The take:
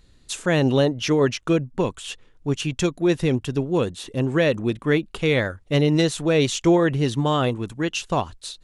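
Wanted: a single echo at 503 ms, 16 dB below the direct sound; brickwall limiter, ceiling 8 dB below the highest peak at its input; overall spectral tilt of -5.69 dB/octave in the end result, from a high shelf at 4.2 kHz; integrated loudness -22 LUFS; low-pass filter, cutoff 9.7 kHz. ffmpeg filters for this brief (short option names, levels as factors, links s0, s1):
-af "lowpass=9700,highshelf=f=4200:g=-7,alimiter=limit=0.168:level=0:latency=1,aecho=1:1:503:0.158,volume=1.58"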